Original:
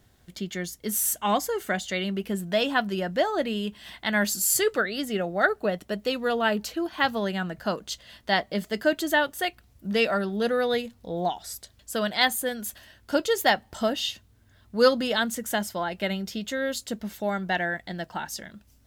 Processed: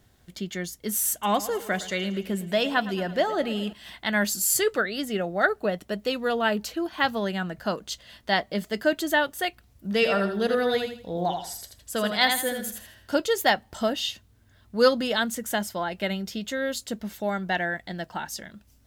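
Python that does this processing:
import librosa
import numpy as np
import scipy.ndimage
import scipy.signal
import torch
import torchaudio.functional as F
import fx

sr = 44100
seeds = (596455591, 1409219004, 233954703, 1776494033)

y = fx.echo_feedback(x, sr, ms=111, feedback_pct=59, wet_db=-16, at=(1.12, 3.73))
y = fx.echo_feedback(y, sr, ms=81, feedback_pct=30, wet_db=-5.5, at=(9.94, 13.15))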